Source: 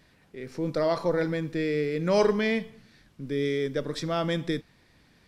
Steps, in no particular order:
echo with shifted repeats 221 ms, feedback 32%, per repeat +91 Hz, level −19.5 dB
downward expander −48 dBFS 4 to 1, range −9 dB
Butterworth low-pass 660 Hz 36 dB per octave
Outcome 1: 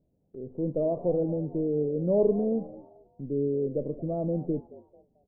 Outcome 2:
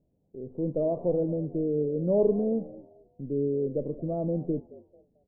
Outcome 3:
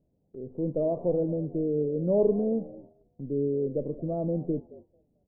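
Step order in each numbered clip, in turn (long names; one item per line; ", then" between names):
Butterworth low-pass, then downward expander, then echo with shifted repeats
downward expander, then echo with shifted repeats, then Butterworth low-pass
echo with shifted repeats, then Butterworth low-pass, then downward expander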